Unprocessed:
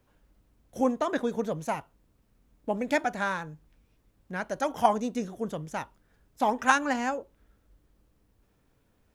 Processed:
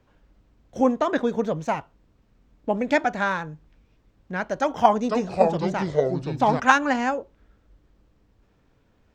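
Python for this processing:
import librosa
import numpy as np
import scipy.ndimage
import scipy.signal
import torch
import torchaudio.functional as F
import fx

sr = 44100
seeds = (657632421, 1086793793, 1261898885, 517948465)

y = fx.echo_pitch(x, sr, ms=486, semitones=-4, count=2, db_per_echo=-3.0, at=(4.57, 6.6))
y = np.convolve(y, np.full(4, 1.0 / 4))[:len(y)]
y = y * librosa.db_to_amplitude(5.5)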